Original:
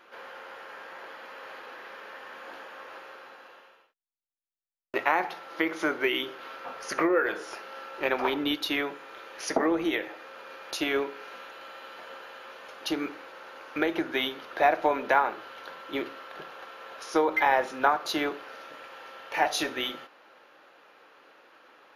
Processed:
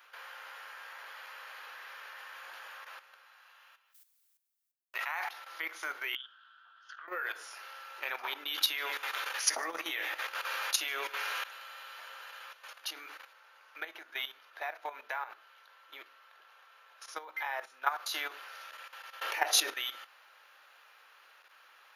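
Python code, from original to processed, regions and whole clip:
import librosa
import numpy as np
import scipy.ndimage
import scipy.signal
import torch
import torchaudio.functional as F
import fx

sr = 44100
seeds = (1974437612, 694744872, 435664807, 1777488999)

y = fx.chain(x, sr, fx.highpass(hz=660.0, slope=12),
    fx.sustainer(db_per_s=35.0), at=(3.26, 5.29))
y = fx.chain(y, sr, fx.double_bandpass(hz=2200.0, octaves=1.1),
    fx.air_absorb(metres=110.0), at=(6.15, 7.08))
y = fx.chain(y, sr, fx.doubler(ms=16.0, db=-10.0),
    fx.echo_thinned(ms=149, feedback_pct=40, hz=150.0, wet_db=-17.0),
    fx.env_flatten(amount_pct=50), at=(8.48, 11.44))
y = fx.chain(y, sr, fx.high_shelf(hz=2900.0, db=-4.0),
    fx.comb_fb(f0_hz=220.0, decay_s=0.21, harmonics='all', damping=0.0, mix_pct=50), at=(13.33, 17.86))
y = fx.chain(y, sr, fx.peak_eq(hz=370.0, db=12.5, octaves=0.95),
    fx.env_flatten(amount_pct=50), at=(19.21, 19.74))
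y = scipy.signal.sosfilt(scipy.signal.butter(2, 1100.0, 'highpass', fs=sr, output='sos'), y)
y = fx.high_shelf(y, sr, hz=8100.0, db=11.5)
y = fx.level_steps(y, sr, step_db=12)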